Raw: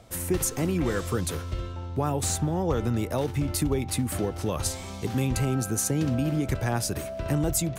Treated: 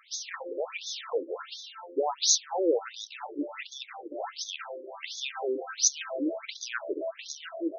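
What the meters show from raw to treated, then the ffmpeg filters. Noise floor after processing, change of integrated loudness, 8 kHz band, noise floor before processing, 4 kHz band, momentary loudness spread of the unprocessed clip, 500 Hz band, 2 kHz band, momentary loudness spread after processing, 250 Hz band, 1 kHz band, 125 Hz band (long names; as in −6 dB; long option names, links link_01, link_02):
−51 dBFS, −3.5 dB, +0.5 dB, −37 dBFS, +5.0 dB, 5 LU, −1.5 dB, −1.5 dB, 15 LU, −9.0 dB, −3.0 dB, below −40 dB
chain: -af "aemphasis=mode=production:type=75fm,afftfilt=real='re*between(b*sr/1024,390*pow(4800/390,0.5+0.5*sin(2*PI*1.4*pts/sr))/1.41,390*pow(4800/390,0.5+0.5*sin(2*PI*1.4*pts/sr))*1.41)':imag='im*between(b*sr/1024,390*pow(4800/390,0.5+0.5*sin(2*PI*1.4*pts/sr))/1.41,390*pow(4800/390,0.5+0.5*sin(2*PI*1.4*pts/sr))*1.41)':win_size=1024:overlap=0.75,volume=5dB"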